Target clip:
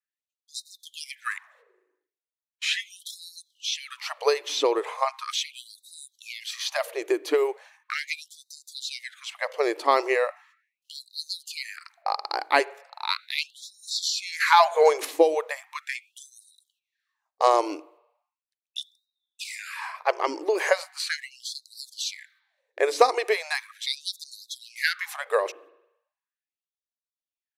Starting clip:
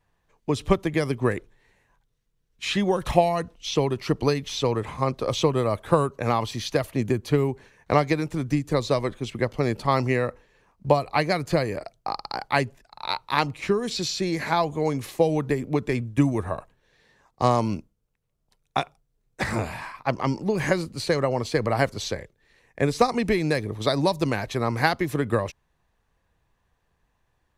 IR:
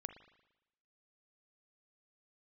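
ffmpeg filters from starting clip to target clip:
-filter_complex "[0:a]agate=range=-22dB:threshold=-53dB:ratio=16:detection=peak,asettb=1/sr,asplit=3[link_01][link_02][link_03];[link_01]atrim=end=14.404[link_04];[link_02]atrim=start=14.4:end=15.05,asetpts=PTS-STARTPTS,afade=type=in:duration=0.004:curve=qsin,afade=type=out:start_time=0.646:duration=0.004:curve=qsin,acontrast=76[link_05];[link_03]atrim=start=15.046[link_06];[link_04][link_05]acrossfade=duration=0.004:curve1=hsin:curve2=qsin[link_07];[link_07][link_06]acrossfade=duration=0.004:curve1=qsin:curve2=hsin,asplit=2[link_08][link_09];[1:a]atrim=start_sample=2205[link_10];[link_09][link_10]afir=irnorm=-1:irlink=0,volume=-5.5dB[link_11];[link_08][link_11]amix=inputs=2:normalize=0,afftfilt=real='re*gte(b*sr/1024,290*pow(3700/290,0.5+0.5*sin(2*PI*0.38*pts/sr)))':imag='im*gte(b*sr/1024,290*pow(3700/290,0.5+0.5*sin(2*PI*0.38*pts/sr)))':win_size=1024:overlap=0.75"

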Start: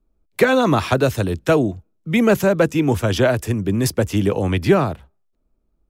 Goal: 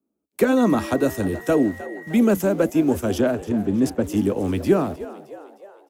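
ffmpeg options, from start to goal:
ffmpeg -i in.wav -filter_complex "[0:a]equalizer=frequency=125:width_type=o:width=1:gain=-12,equalizer=frequency=250:width_type=o:width=1:gain=9,equalizer=frequency=1000:width_type=o:width=1:gain=-3,equalizer=frequency=2000:width_type=o:width=1:gain=-9,equalizer=frequency=4000:width_type=o:width=1:gain=-9,acrossover=split=110|1000|2400[link_01][link_02][link_03][link_04];[link_01]acrusher=bits=7:mix=0:aa=0.000001[link_05];[link_02]flanger=delay=5.9:depth=8.8:regen=74:speed=1.8:shape=triangular[link_06];[link_05][link_06][link_03][link_04]amix=inputs=4:normalize=0,asettb=1/sr,asplit=3[link_07][link_08][link_09];[link_07]atrim=end=0.574[link_10];[link_08]atrim=start=0.57:end=2.15,asetpts=PTS-STARTPTS,afade=type=in:duration=0.004:curve=qsin,afade=type=out:start_time=1.576:duration=0.004:curve=qsin,aeval=exprs='val(0)+0.0112*sin(2*PI*1900*n/s)':channel_layout=same[link_11];[link_09]atrim=start=2.146[link_12];[link_10][link_11]acrossfade=duration=0.004:curve1=hsin:curve2=qsin[link_13];[link_13][link_12]acrossfade=duration=0.004:curve1=qsin:curve2=hsin,asettb=1/sr,asplit=3[link_14][link_15][link_16];[link_14]atrim=end=3.214[link_17];[link_15]atrim=start=3.21:end=4.04,asetpts=PTS-STARTPTS,afade=type=in:duration=0.004:curve=qsin,afade=type=out:start_time=0.826:duration=0.004:curve=qsin,adynamicsmooth=sensitivity=2.5:basefreq=3500[link_18];[link_16]atrim=start=4.036[link_19];[link_17][link_18]acrossfade=duration=0.004:curve1=hsin:curve2=qsin[link_20];[link_20][link_19]acrossfade=duration=0.004:curve1=qsin:curve2=hsin,asplit=6[link_21][link_22][link_23][link_24][link_25][link_26];[link_22]adelay=309,afreqshift=67,volume=-16dB[link_27];[link_23]adelay=618,afreqshift=134,volume=-21.5dB[link_28];[link_24]adelay=927,afreqshift=201,volume=-27dB[link_29];[link_25]adelay=1236,afreqshift=268,volume=-32.5dB[link_30];[link_26]adelay=1545,afreqshift=335,volume=-38.1dB[link_31];[link_21][link_27][link_28][link_29][link_30][link_31]amix=inputs=6:normalize=0" out.wav

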